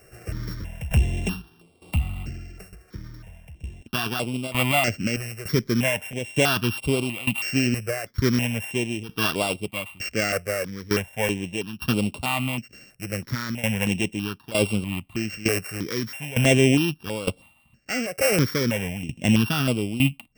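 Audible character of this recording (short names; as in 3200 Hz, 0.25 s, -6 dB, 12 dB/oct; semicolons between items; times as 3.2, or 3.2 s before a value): a buzz of ramps at a fixed pitch in blocks of 16 samples; tremolo saw down 1.1 Hz, depth 85%; notches that jump at a steady rate 3.1 Hz 940–6100 Hz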